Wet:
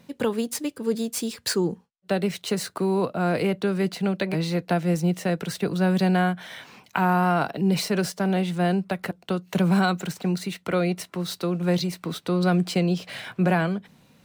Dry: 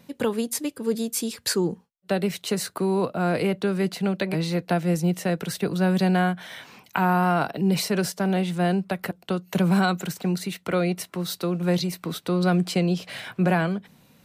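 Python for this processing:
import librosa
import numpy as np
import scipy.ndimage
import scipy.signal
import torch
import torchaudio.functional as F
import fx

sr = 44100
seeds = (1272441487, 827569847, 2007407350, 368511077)

y = scipy.signal.medfilt(x, 3)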